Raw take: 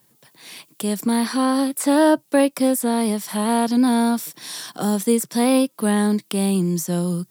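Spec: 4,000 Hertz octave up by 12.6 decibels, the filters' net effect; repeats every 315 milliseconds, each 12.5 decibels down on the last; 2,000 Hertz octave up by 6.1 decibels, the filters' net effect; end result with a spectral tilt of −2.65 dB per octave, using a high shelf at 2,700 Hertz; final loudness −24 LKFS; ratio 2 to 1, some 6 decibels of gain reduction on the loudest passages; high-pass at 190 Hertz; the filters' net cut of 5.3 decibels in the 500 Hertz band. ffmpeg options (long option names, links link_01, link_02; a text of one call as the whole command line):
ffmpeg -i in.wav -af "highpass=190,equalizer=frequency=500:width_type=o:gain=-7,equalizer=frequency=2000:width_type=o:gain=3,highshelf=frequency=2700:gain=8.5,equalizer=frequency=4000:width_type=o:gain=7.5,acompressor=threshold=-23dB:ratio=2,aecho=1:1:315|630|945:0.237|0.0569|0.0137,volume=-1.5dB" out.wav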